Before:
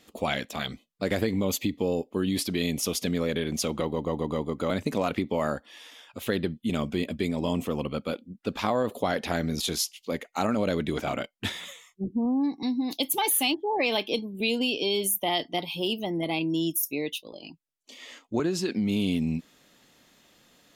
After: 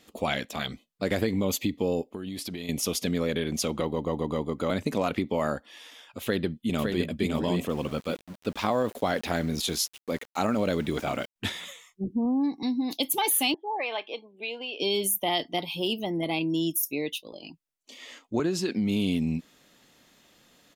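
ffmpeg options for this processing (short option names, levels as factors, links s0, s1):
-filter_complex "[0:a]asettb=1/sr,asplit=3[s0][s1][s2];[s0]atrim=end=2.084[s3];[s1]atrim=start=2.08:end=2.69,asetpts=PTS-STARTPTS,afade=t=in:d=0.004:c=qsin,afade=t=out:st=0.606:d=0.004:c=qsin,acompressor=threshold=0.0282:ratio=12:attack=3.2:release=140:knee=1:detection=peak[s4];[s2]atrim=start=2.686[s5];[s3][s4]acrossfade=d=0.004:c1=hsin:c2=qsin[s6];[s6][s5]acrossfade=d=0.004:c1=qsin:c2=hsin,asplit=2[s7][s8];[s8]afade=t=in:st=6.22:d=0.01,afade=t=out:st=7.09:d=0.01,aecho=0:1:560|1120|1680:0.630957|0.157739|0.0394348[s9];[s7][s9]amix=inputs=2:normalize=0,asettb=1/sr,asplit=3[s10][s11][s12];[s10]atrim=end=7.694[s13];[s11]atrim=start=7.69:end=11.36,asetpts=PTS-STARTPTS,afade=t=in:d=0.004:c=qsin,afade=t=out:st=3.666:d=0.004:c=qsin,aeval=exprs='val(0)*gte(abs(val(0)),0.00708)':c=same[s14];[s12]atrim=start=11.356[s15];[s13][s14]acrossfade=d=0.004:c1=hsin:c2=qsin[s16];[s16][s15]acrossfade=d=0.004:c1=qsin:c2=hsin,asettb=1/sr,asplit=3[s17][s18][s19];[s17]atrim=end=13.544[s20];[s18]atrim=start=13.54:end=14.8,asetpts=PTS-STARTPTS,afade=t=in:d=0.004:c=qsin,afade=t=out:st=1.256:d=0.004:c=qsin,highpass=700,lowpass=2100[s21];[s19]atrim=start=14.796[s22];[s20][s21]acrossfade=d=0.004:c1=hsin:c2=qsin[s23];[s23][s22]acrossfade=d=0.004:c1=qsin:c2=hsin"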